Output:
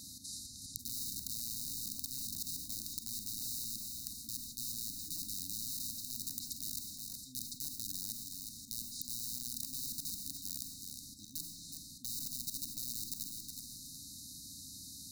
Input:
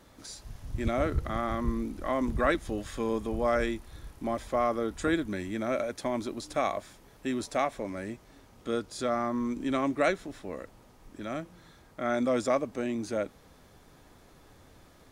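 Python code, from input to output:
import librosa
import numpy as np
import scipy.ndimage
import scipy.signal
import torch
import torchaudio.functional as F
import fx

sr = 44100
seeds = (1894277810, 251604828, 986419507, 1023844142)

y = fx.rattle_buzz(x, sr, strikes_db=-37.0, level_db=-30.0)
y = scipy.signal.sosfilt(scipy.signal.butter(4, 55.0, 'highpass', fs=sr, output='sos'), y)
y = fx.hum_notches(y, sr, base_hz=60, count=9)
y = fx.env_lowpass_down(y, sr, base_hz=1100.0, full_db=-27.0)
y = fx.low_shelf(y, sr, hz=110.0, db=-10.0)
y = fx.auto_swell(y, sr, attack_ms=188.0)
y = (np.mod(10.0 ** (32.5 / 20.0) * y + 1.0, 2.0) - 1.0) / 10.0 ** (32.5 / 20.0)
y = fx.brickwall_bandstop(y, sr, low_hz=290.0, high_hz=3700.0)
y = fx.echo_feedback(y, sr, ms=368, feedback_pct=24, wet_db=-16)
y = fx.rev_schroeder(y, sr, rt60_s=0.53, comb_ms=32, drr_db=10.0)
y = fx.spectral_comp(y, sr, ratio=4.0)
y = y * 10.0 ** (12.0 / 20.0)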